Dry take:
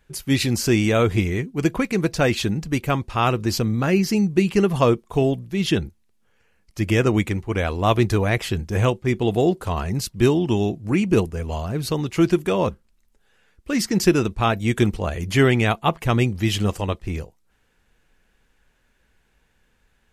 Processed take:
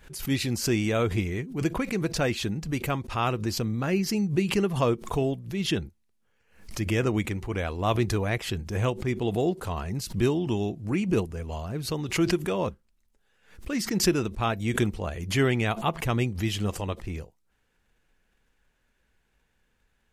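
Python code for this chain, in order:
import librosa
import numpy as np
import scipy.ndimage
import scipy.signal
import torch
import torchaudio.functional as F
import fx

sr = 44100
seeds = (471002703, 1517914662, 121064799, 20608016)

y = fx.pre_swell(x, sr, db_per_s=120.0)
y = y * librosa.db_to_amplitude(-7.0)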